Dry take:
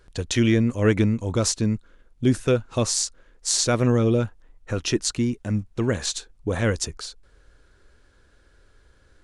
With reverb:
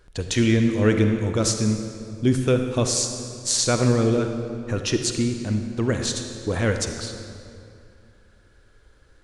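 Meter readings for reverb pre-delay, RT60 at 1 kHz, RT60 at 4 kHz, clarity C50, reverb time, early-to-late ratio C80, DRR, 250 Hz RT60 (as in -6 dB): 39 ms, 2.4 s, 1.7 s, 6.0 dB, 2.5 s, 7.0 dB, 5.5 dB, 2.7 s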